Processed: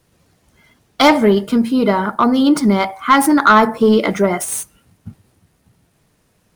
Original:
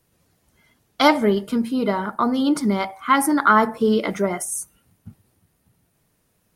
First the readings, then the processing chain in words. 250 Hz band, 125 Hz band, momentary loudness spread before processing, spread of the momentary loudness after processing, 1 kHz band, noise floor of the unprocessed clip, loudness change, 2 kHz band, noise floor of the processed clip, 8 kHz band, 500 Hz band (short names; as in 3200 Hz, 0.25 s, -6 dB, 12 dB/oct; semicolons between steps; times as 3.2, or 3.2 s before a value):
+6.5 dB, +7.0 dB, 9 LU, 7 LU, +5.5 dB, -67 dBFS, +6.0 dB, +5.0 dB, -61 dBFS, +4.5 dB, +6.0 dB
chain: median filter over 3 samples; soft clip -9.5 dBFS, distortion -16 dB; gain +7.5 dB